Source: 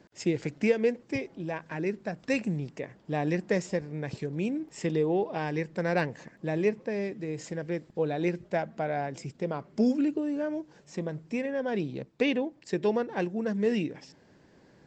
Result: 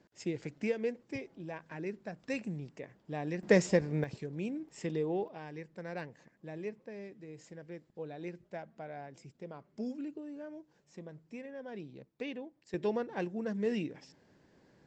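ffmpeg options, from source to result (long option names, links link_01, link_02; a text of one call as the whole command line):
ffmpeg -i in.wav -af "asetnsamples=nb_out_samples=441:pad=0,asendcmd='3.43 volume volume 3dB;4.04 volume volume -7dB;5.28 volume volume -14dB;12.74 volume volume -6dB',volume=-8.5dB" out.wav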